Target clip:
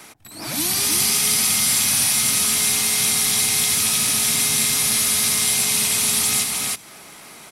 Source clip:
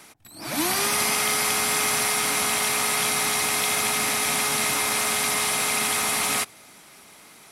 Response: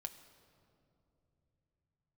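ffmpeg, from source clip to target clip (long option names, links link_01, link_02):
-filter_complex "[0:a]aecho=1:1:314:0.708,acrossover=split=220|3000[link_01][link_02][link_03];[link_02]acompressor=threshold=-38dB:ratio=10[link_04];[link_01][link_04][link_03]amix=inputs=3:normalize=0,volume=5.5dB"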